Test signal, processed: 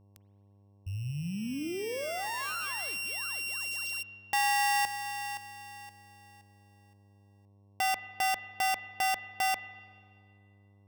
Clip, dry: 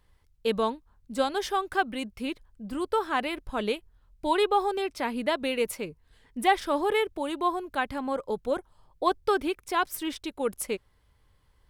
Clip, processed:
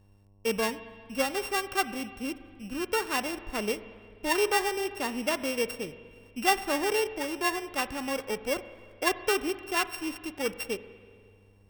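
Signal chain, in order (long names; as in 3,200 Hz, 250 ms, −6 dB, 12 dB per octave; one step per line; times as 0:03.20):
samples sorted by size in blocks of 16 samples
spring reverb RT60 2 s, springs 41/48 ms, chirp 75 ms, DRR 13 dB
hum with harmonics 100 Hz, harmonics 11, −59 dBFS −8 dB per octave
level −2 dB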